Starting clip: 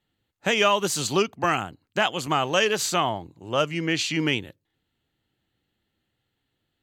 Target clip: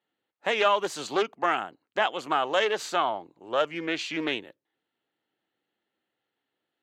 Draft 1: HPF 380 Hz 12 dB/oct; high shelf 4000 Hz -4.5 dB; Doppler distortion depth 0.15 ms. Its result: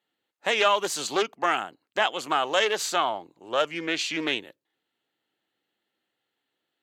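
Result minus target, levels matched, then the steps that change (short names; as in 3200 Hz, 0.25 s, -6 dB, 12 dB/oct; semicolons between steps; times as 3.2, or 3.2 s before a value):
8000 Hz band +7.0 dB
change: high shelf 4000 Hz -16 dB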